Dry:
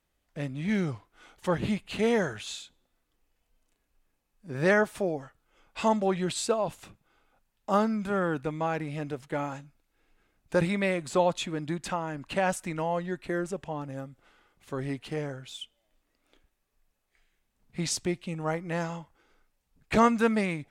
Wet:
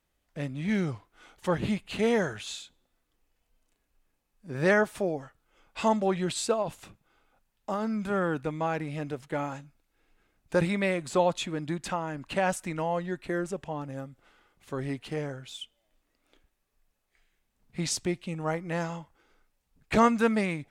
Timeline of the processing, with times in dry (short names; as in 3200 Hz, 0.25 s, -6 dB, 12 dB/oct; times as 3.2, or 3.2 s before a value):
6.62–8 compressor, threshold -26 dBFS